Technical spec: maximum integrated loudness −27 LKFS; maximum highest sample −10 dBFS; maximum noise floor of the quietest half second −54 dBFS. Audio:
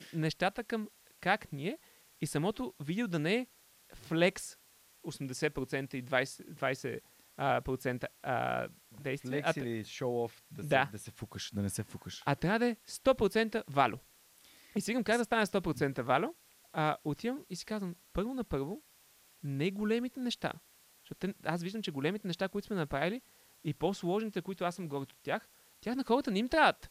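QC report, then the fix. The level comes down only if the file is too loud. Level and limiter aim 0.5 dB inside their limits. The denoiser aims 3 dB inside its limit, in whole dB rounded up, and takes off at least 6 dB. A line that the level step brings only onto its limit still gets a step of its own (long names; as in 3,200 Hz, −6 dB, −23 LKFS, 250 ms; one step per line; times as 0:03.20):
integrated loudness −34.5 LKFS: in spec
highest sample −14.0 dBFS: in spec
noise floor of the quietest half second −64 dBFS: in spec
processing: no processing needed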